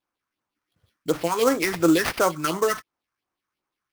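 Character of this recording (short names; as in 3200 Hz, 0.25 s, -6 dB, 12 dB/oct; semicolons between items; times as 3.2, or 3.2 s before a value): phasing stages 4, 2.8 Hz, lowest notch 520–3900 Hz; aliases and images of a low sample rate 7500 Hz, jitter 20%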